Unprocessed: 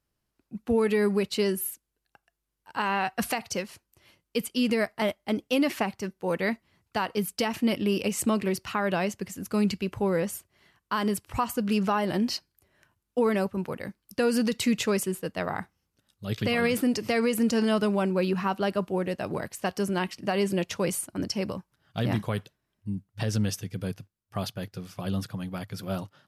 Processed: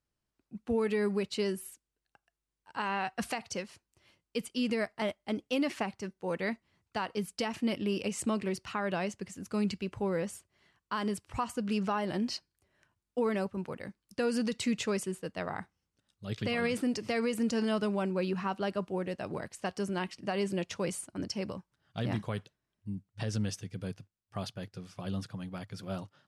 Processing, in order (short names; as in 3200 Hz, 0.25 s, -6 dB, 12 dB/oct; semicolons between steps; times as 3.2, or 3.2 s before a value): LPF 9800 Hz 24 dB/oct; gain -6 dB